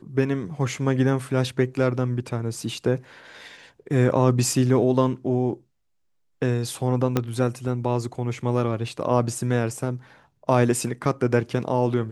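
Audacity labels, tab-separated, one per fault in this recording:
7.170000	7.170000	pop -8 dBFS

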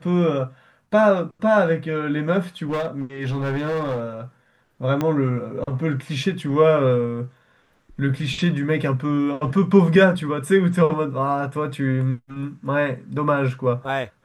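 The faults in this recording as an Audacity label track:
2.690000	4.010000	clipped -20.5 dBFS
5.010000	5.010000	pop -11 dBFS

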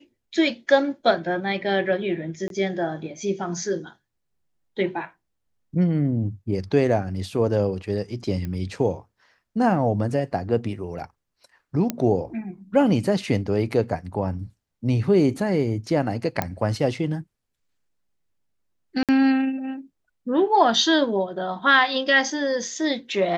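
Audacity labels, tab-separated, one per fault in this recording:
2.480000	2.500000	dropout 22 ms
8.450000	8.450000	pop -20 dBFS
11.900000	11.900000	pop -10 dBFS
16.420000	16.420000	pop -9 dBFS
19.030000	19.090000	dropout 57 ms

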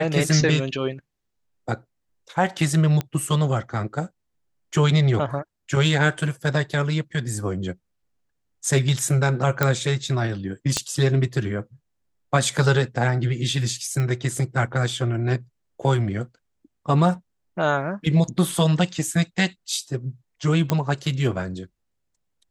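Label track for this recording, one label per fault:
3.010000	3.010000	pop -13 dBFS
9.630000	9.630000	pop -5 dBFS
10.770000	10.770000	pop -8 dBFS
14.000000	14.000000	pop -16 dBFS
20.700000	20.700000	pop -7 dBFS

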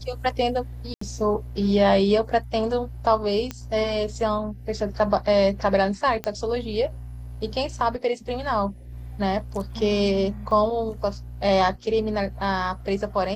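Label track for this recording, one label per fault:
0.940000	1.010000	dropout 74 ms
3.510000	3.510000	pop -15 dBFS
6.240000	6.240000	pop -13 dBFS
10.510000	10.510000	dropout 2.3 ms

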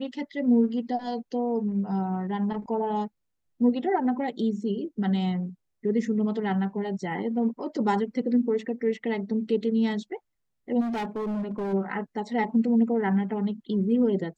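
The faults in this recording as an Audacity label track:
10.800000	11.740000	clipped -27 dBFS

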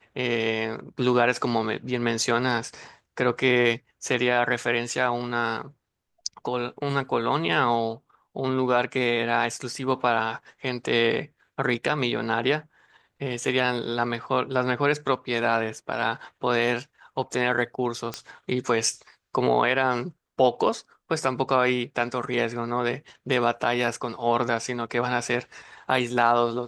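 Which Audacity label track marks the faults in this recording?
18.140000	18.140000	pop -14 dBFS

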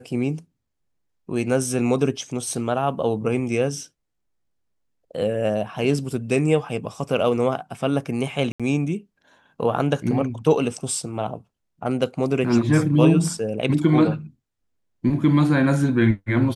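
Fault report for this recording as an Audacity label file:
8.520000	8.600000	dropout 76 ms

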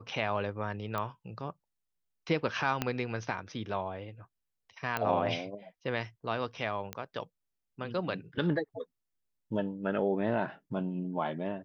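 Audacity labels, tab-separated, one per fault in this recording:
0.980000	0.980000	pop -20 dBFS
2.820000	2.820000	pop -14 dBFS
4.970000	4.970000	pop -17 dBFS
6.930000	6.930000	pop -20 dBFS

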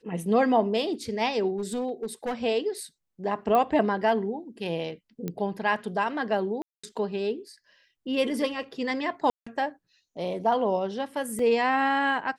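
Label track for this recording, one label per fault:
1.580000	2.340000	clipped -25.5 dBFS
3.550000	3.550000	pop -14 dBFS
5.280000	5.280000	pop -18 dBFS
6.620000	6.830000	dropout 215 ms
9.300000	9.460000	dropout 165 ms
11.390000	11.390000	dropout 2.8 ms

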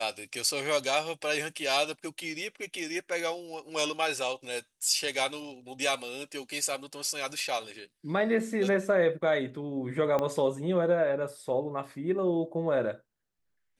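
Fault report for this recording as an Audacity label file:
10.190000	10.190000	pop -17 dBFS

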